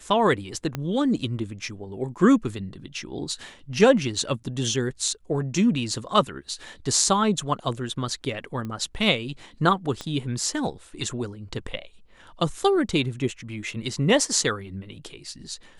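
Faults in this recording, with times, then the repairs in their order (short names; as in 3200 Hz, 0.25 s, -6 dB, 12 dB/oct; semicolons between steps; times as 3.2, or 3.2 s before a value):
0.75 pop -14 dBFS
8.65 pop -22 dBFS
10.01 pop -18 dBFS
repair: de-click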